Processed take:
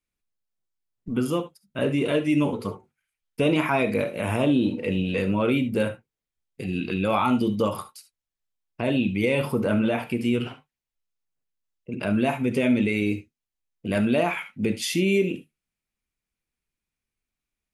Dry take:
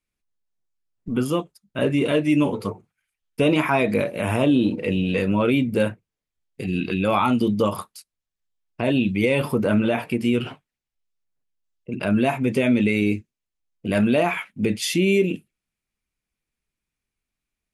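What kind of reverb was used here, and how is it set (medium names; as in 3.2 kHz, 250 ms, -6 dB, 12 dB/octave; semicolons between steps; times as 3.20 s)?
gated-style reverb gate 90 ms rising, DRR 11 dB; trim -3 dB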